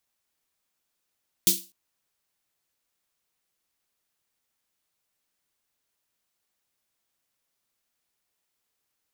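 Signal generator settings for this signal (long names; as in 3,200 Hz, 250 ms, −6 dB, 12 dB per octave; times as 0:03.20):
synth snare length 0.25 s, tones 190 Hz, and 340 Hz, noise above 3,300 Hz, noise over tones 12 dB, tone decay 0.28 s, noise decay 0.30 s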